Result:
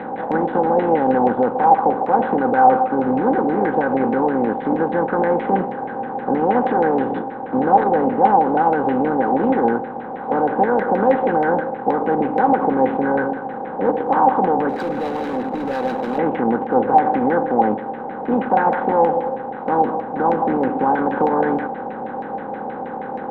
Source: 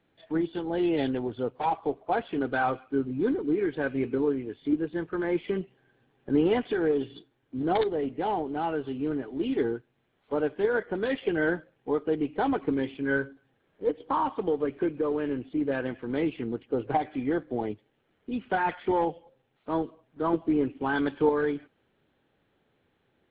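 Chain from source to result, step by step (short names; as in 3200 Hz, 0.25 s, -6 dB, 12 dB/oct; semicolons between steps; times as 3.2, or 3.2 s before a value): per-bin compression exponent 0.4; limiter -15.5 dBFS, peak gain reduction 9 dB; LFO low-pass saw down 6.3 Hz 690–2200 Hz; 14.69–16.18 hard clip -25.5 dBFS, distortion -17 dB; small resonant body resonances 220/520/780/3900 Hz, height 14 dB, ringing for 50 ms; gain -1.5 dB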